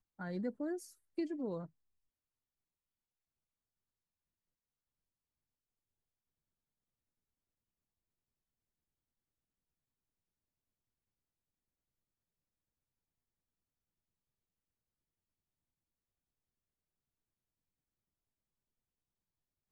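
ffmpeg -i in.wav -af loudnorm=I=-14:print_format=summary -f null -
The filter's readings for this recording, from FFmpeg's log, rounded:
Input Integrated:    -41.3 LUFS
Input True Peak:     -27.3 dBTP
Input LRA:             3.3 LU
Input Threshold:     -51.6 LUFS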